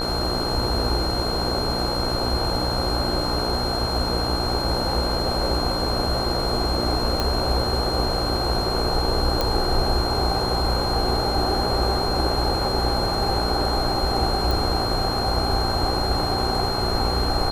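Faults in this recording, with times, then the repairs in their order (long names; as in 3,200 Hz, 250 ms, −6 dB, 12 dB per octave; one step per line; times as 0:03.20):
mains buzz 60 Hz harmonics 26 −28 dBFS
whistle 4,200 Hz −27 dBFS
0:07.20: click −9 dBFS
0:09.41: click
0:14.51: click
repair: click removal
hum removal 60 Hz, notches 26
notch filter 4,200 Hz, Q 30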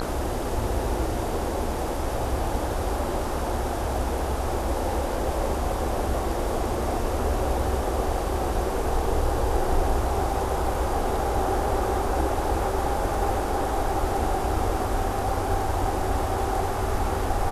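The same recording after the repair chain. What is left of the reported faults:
none of them is left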